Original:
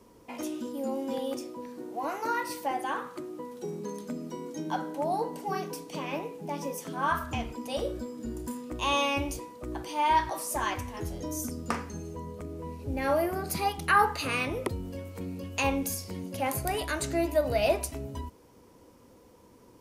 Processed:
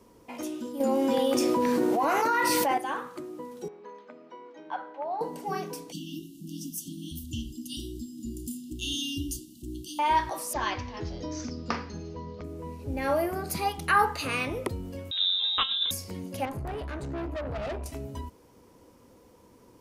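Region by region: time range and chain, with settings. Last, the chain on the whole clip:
0.8–2.78 HPF 46 Hz + bell 1800 Hz +3.5 dB 2.2 oct + fast leveller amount 100%
3.68–5.21 BPF 660–2600 Hz + air absorption 100 m
5.92–9.99 brick-wall FIR band-stop 370–2700 Hz + high shelf 6300 Hz +6.5 dB + upward compressor, threshold -44 dBFS
10.53–12.44 resonant high shelf 6300 Hz -10 dB, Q 3 + careless resampling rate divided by 3×, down none, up filtered
15.11–15.91 low shelf 410 Hz +10 dB + negative-ratio compressor -25 dBFS, ratio -0.5 + inverted band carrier 3800 Hz
16.45–17.86 LPF 1000 Hz 6 dB/oct + low shelf 230 Hz +8 dB + tube stage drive 31 dB, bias 0.35
whole clip: dry

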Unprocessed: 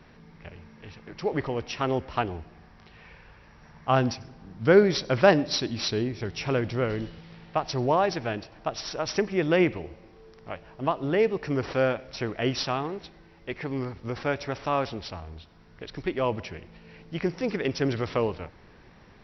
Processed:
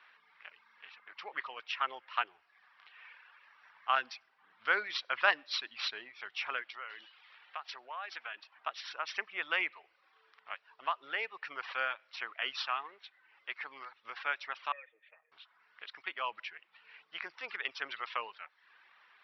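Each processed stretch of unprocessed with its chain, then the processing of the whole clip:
6.62–8.53 HPF 380 Hz 6 dB/oct + compressor 3:1, threshold -31 dBFS
14.72–15.32 vocal tract filter e + high shelf 2900 Hz +8.5 dB + comb 6.5 ms, depth 68%
whole clip: reverb removal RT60 0.62 s; Chebyshev band-pass 1200–3300 Hz, order 2

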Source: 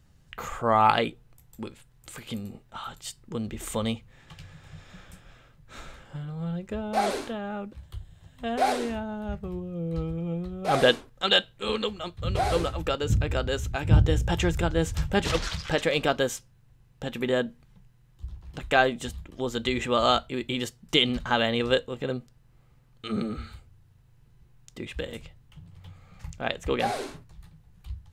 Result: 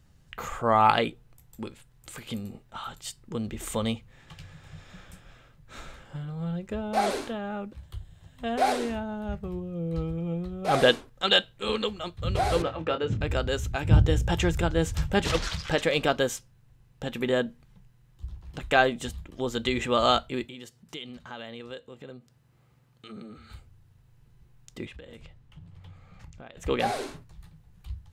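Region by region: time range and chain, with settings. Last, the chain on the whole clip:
12.62–13.21 BPF 130–2800 Hz + doubler 25 ms -8.5 dB
20.45–23.5 compressor 2:1, threshold -50 dBFS + HPF 96 Hz
24.86–26.57 high shelf 6300 Hz -9.5 dB + compressor 12:1, threshold -41 dBFS
whole clip: dry

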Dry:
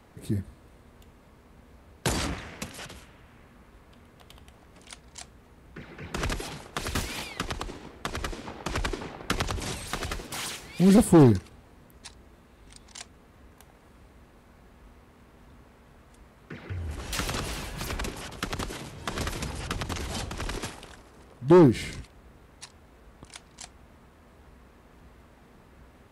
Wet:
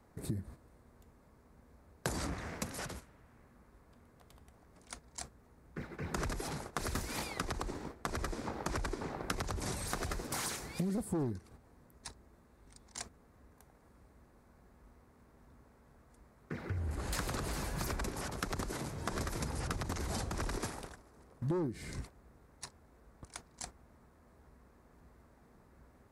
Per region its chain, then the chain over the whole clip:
16.8–17.54 notch 5700 Hz, Q 8.9 + Doppler distortion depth 0.21 ms
whole clip: gate -45 dBFS, range -9 dB; bell 3000 Hz -10.5 dB 0.79 oct; compressor 12:1, threshold -34 dBFS; gain +1 dB

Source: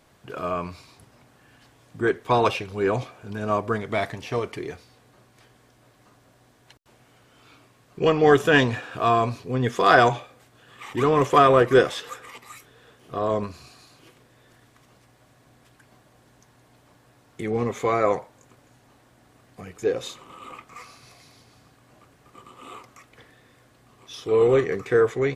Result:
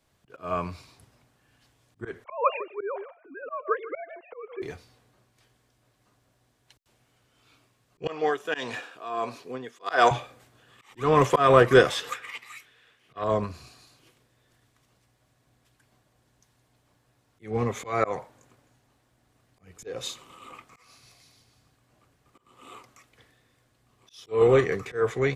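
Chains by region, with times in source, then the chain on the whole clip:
2.24–4.62 sine-wave speech + LPF 1800 Hz 6 dB/oct + echo 0.155 s -16 dB
8.07–10.11 HPF 310 Hz + tremolo 1.5 Hz, depth 80%
12.12–13.24 bell 2200 Hz +14 dB 1.7 oct + upward expander, over -35 dBFS
whole clip: dynamic EQ 320 Hz, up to -4 dB, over -31 dBFS, Q 0.88; auto swell 0.168 s; three-band expander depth 40%; gain -1 dB

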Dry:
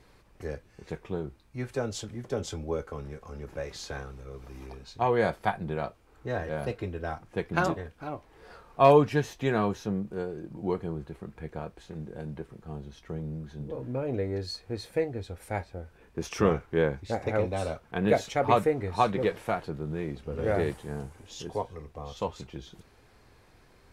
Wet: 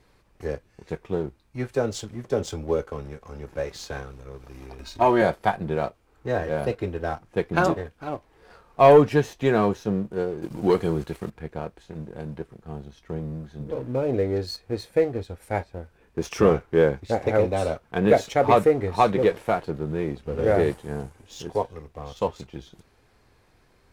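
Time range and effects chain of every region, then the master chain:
4.79–5.22 upward compressor, threshold -37 dBFS + comb 3.2 ms, depth 90%
10.42–11.3 high shelf 2100 Hz +12 dB + sample leveller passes 1
whole clip: dynamic EQ 460 Hz, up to +4 dB, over -37 dBFS, Q 0.81; sample leveller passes 1

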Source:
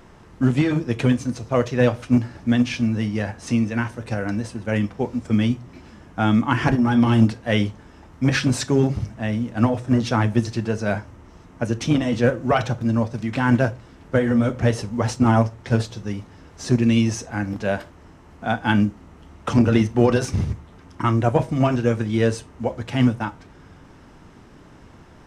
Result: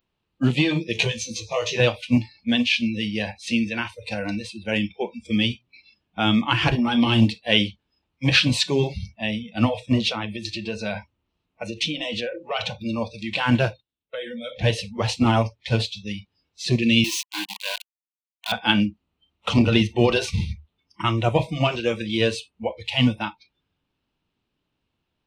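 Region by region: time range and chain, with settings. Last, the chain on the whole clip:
0.93–1.8 bell 6100 Hz +10 dB 0.42 oct + compressor 3:1, threshold -19 dBFS + doubler 18 ms -2 dB
10.08–12.84 high shelf 8700 Hz -3 dB + compressor, threshold -20 dBFS
13.71–14.64 gate -42 dBFS, range -18 dB + bell 3600 Hz +6.5 dB 0.34 oct + compressor 8:1, threshold -22 dBFS
17.04–18.52 pre-emphasis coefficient 0.97 + small resonant body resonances 320/990 Hz, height 17 dB, ringing for 40 ms + companded quantiser 2-bit
whole clip: spectral noise reduction 30 dB; band shelf 3300 Hz +12.5 dB 1.1 oct; gain -1.5 dB

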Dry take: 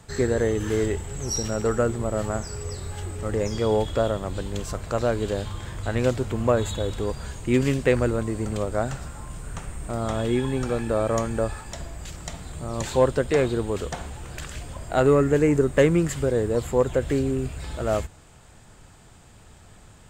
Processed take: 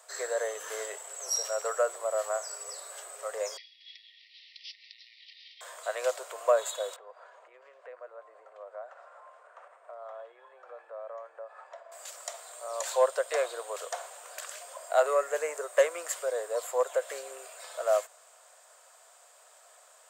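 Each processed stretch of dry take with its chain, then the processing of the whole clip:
3.57–5.61 compressor 4:1, threshold -28 dBFS + careless resampling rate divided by 4×, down none, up filtered + brick-wall FIR high-pass 1800 Hz
6.96–11.92 LPF 1500 Hz + compressor 5:1, threshold -33 dBFS + low shelf 440 Hz -6 dB
whole clip: steep high-pass 560 Hz 48 dB/oct; bell 2600 Hz -10 dB 2.3 oct; notch 840 Hz, Q 5.4; gain +3.5 dB

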